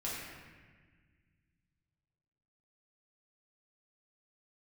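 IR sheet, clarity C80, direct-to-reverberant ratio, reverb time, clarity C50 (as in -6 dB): 0.5 dB, -7.5 dB, 1.5 s, -1.5 dB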